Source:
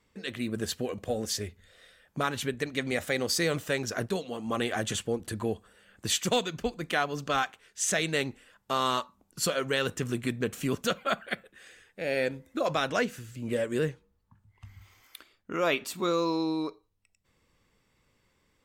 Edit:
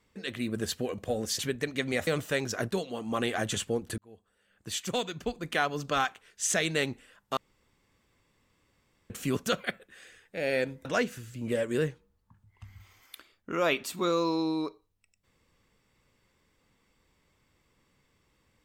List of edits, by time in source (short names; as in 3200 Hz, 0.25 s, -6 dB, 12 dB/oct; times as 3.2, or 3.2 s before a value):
1.39–2.38 cut
3.06–3.45 cut
5.36–7 fade in
8.75–10.48 room tone
11.02–11.28 cut
12.49–12.86 cut